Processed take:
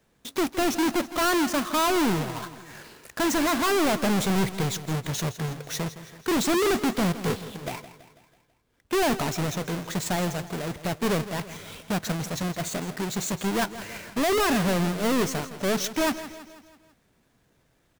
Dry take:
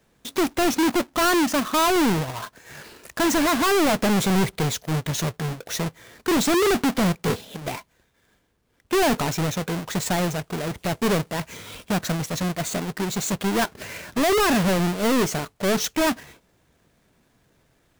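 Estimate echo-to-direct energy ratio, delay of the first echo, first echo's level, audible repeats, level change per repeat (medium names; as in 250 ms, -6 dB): -12.5 dB, 164 ms, -14.0 dB, 4, -5.5 dB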